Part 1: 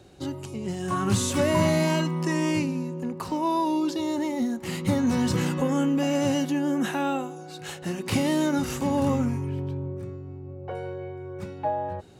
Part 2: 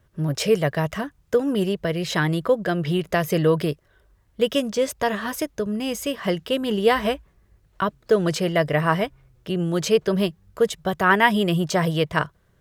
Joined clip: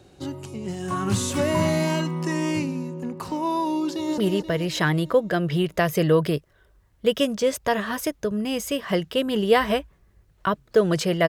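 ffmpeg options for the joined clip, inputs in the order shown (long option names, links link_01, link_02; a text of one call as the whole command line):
ffmpeg -i cue0.wav -i cue1.wav -filter_complex "[0:a]apad=whole_dur=11.28,atrim=end=11.28,atrim=end=4.182[link_01];[1:a]atrim=start=1.528:end=8.63[link_02];[link_01][link_02]acrossfade=duration=0.004:curve1=hsin:curve2=hsin,asplit=2[link_03][link_04];[link_04]afade=type=in:start_time=3.84:duration=0.01,afade=type=out:start_time=4.18:duration=0.01,aecho=0:1:240|480|720|960|1200|1440|1680:0.473151|0.260233|0.143128|0.0787205|0.0432963|0.023813|0.0130971[link_05];[link_03][link_05]amix=inputs=2:normalize=0" out.wav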